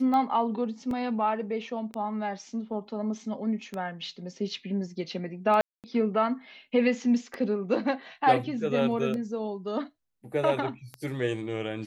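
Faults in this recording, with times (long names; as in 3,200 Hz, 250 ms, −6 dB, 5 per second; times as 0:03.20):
scratch tick 33 1/3 rpm −21 dBFS
0:00.91: drop-out 2.4 ms
0:05.61–0:05.84: drop-out 228 ms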